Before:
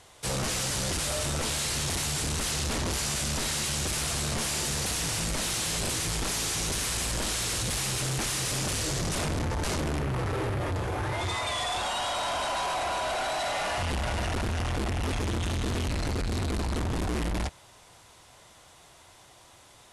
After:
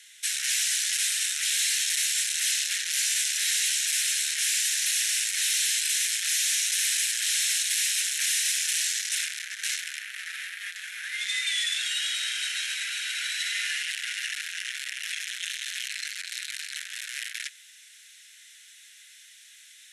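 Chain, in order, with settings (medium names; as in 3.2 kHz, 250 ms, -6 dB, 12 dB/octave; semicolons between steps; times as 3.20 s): steep high-pass 1.6 kHz 72 dB/octave; band-stop 4.7 kHz, Q 10; trim +6 dB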